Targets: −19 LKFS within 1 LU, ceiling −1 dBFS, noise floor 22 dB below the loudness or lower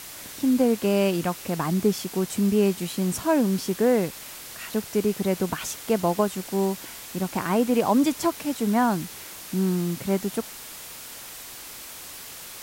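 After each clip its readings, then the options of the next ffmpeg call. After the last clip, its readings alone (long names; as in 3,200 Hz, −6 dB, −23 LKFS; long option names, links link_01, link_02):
background noise floor −41 dBFS; target noise floor −47 dBFS; integrated loudness −24.5 LKFS; sample peak −10.0 dBFS; target loudness −19.0 LKFS
→ -af "afftdn=noise_reduction=6:noise_floor=-41"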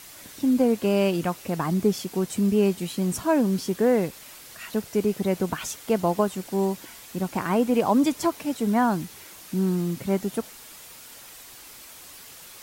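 background noise floor −45 dBFS; target noise floor −47 dBFS
→ -af "afftdn=noise_reduction=6:noise_floor=-45"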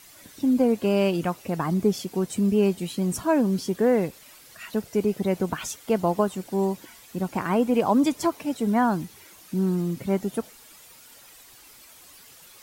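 background noise floor −50 dBFS; integrated loudness −25.0 LKFS; sample peak −10.0 dBFS; target loudness −19.0 LKFS
→ -af "volume=6dB"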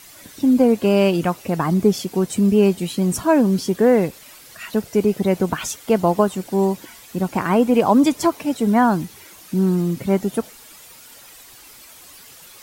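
integrated loudness −19.0 LKFS; sample peak −4.0 dBFS; background noise floor −44 dBFS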